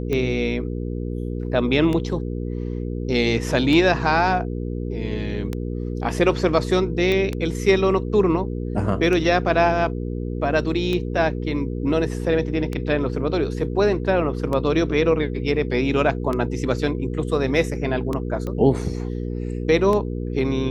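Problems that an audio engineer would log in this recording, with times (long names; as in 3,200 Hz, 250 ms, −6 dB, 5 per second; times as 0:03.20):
mains hum 60 Hz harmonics 8 −27 dBFS
scratch tick 33 1/3 rpm −13 dBFS
0:07.12: click −11 dBFS
0:18.47: click −18 dBFS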